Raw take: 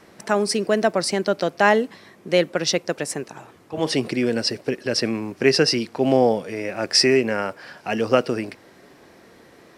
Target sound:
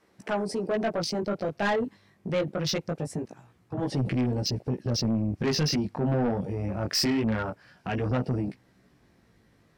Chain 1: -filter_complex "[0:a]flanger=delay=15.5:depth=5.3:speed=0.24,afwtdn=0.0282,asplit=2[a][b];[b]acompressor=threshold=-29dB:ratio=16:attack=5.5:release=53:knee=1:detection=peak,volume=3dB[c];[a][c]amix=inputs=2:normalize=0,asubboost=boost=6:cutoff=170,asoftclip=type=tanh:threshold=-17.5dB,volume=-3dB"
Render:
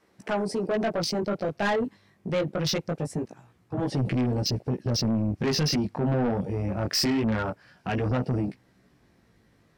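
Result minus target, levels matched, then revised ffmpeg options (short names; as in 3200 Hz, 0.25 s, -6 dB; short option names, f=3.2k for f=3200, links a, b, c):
compressor: peak gain reduction -7.5 dB
-filter_complex "[0:a]flanger=delay=15.5:depth=5.3:speed=0.24,afwtdn=0.0282,asplit=2[a][b];[b]acompressor=threshold=-37dB:ratio=16:attack=5.5:release=53:knee=1:detection=peak,volume=3dB[c];[a][c]amix=inputs=2:normalize=0,asubboost=boost=6:cutoff=170,asoftclip=type=tanh:threshold=-17.5dB,volume=-3dB"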